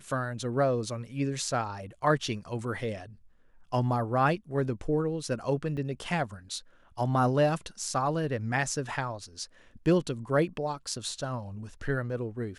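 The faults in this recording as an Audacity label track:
5.770000	5.780000	gap 5.5 ms

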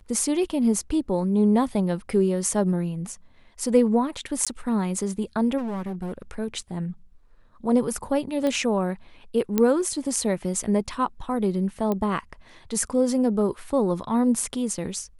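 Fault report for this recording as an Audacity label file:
4.450000	4.470000	gap 16 ms
5.570000	6.220000	clipped -27 dBFS
8.470000	8.470000	pop -15 dBFS
9.580000	9.580000	pop -8 dBFS
11.920000	11.920000	pop -14 dBFS

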